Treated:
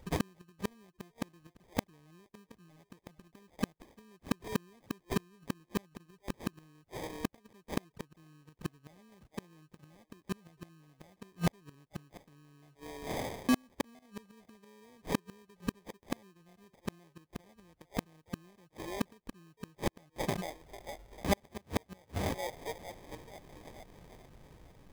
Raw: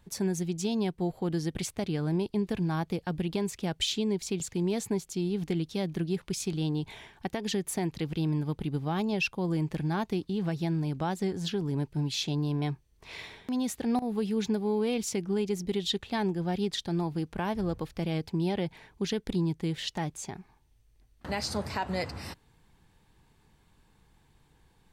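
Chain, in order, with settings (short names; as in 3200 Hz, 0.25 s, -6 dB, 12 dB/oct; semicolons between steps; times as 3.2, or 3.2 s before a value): delay with a stepping band-pass 0.447 s, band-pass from 590 Hz, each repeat 0.7 oct, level -10 dB; sample-rate reducer 1400 Hz, jitter 0%; flipped gate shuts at -24 dBFS, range -37 dB; gain +6.5 dB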